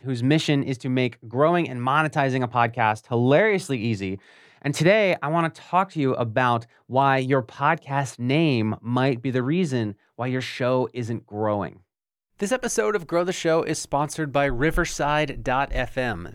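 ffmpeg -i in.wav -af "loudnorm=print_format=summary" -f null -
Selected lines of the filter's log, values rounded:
Input Integrated:    -23.4 LUFS
Input True Peak:      -4.9 dBTP
Input LRA:             3.4 LU
Input Threshold:     -33.6 LUFS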